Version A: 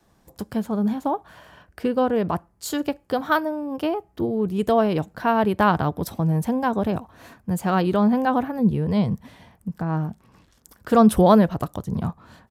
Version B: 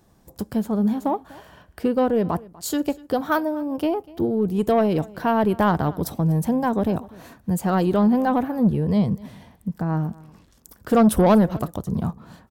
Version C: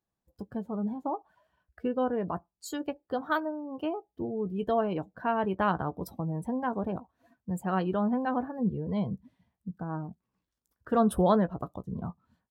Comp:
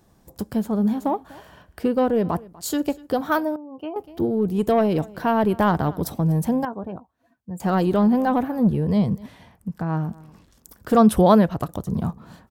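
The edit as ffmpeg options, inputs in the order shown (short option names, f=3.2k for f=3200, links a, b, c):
-filter_complex "[2:a]asplit=2[a][b];[0:a]asplit=2[c][d];[1:a]asplit=5[e][f][g][h][i];[e]atrim=end=3.562[j];[a]atrim=start=3.558:end=3.962[k];[f]atrim=start=3.958:end=6.652[l];[b]atrim=start=6.648:end=7.602[m];[g]atrim=start=7.598:end=9.262[n];[c]atrim=start=9.258:end=10.072[o];[h]atrim=start=10.068:end=10.972[p];[d]atrim=start=10.968:end=11.692[q];[i]atrim=start=11.688[r];[j][k]acrossfade=d=0.004:c1=hsin:c2=hsin[s];[s][l]acrossfade=d=0.004:c1=hsin:c2=hsin[t];[t][m]acrossfade=d=0.004:c1=hsin:c2=hsin[u];[u][n]acrossfade=d=0.004:c1=hsin:c2=hsin[v];[v][o]acrossfade=d=0.004:c1=hsin:c2=hsin[w];[w][p]acrossfade=d=0.004:c1=hsin:c2=hsin[x];[x][q]acrossfade=d=0.004:c1=hsin:c2=hsin[y];[y][r]acrossfade=d=0.004:c1=hsin:c2=hsin"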